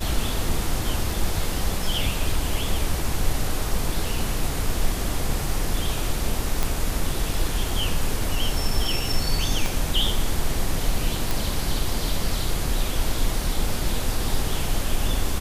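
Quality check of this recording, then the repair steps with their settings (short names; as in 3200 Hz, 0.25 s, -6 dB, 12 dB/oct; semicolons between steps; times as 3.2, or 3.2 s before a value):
6.63 pop
9.66 pop
11.31 pop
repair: de-click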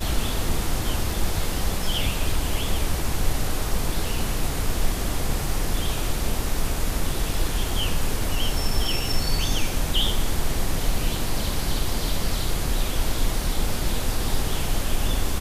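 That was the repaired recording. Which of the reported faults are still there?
9.66 pop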